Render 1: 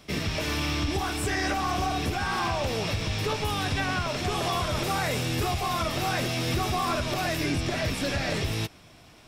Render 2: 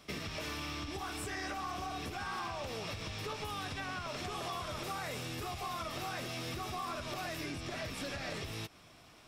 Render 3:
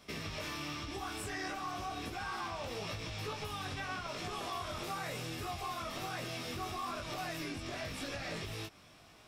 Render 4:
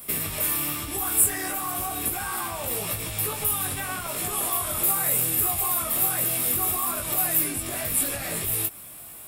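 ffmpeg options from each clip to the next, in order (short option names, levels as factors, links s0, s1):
-af "equalizer=f=1200:t=o:w=0.25:g=4.5,acompressor=threshold=0.0282:ratio=6,lowshelf=f=230:g=-4.5,volume=0.562"
-af "flanger=delay=17.5:depth=4:speed=0.97,volume=1.33"
-af "aexciter=amount=11:drive=9.4:freq=8500,volume=2.37"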